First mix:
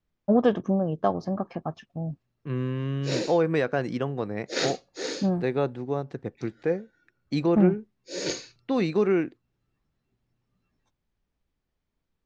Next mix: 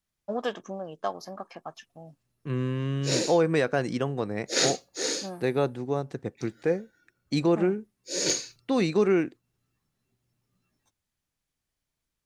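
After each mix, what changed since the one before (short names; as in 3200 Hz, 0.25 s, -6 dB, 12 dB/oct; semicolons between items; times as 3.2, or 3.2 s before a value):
first voice: add HPF 1300 Hz 6 dB/oct; master: remove air absorption 130 m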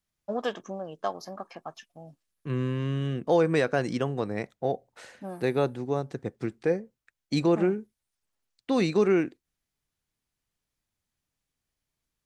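background: muted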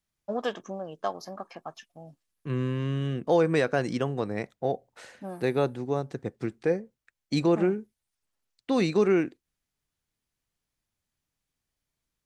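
none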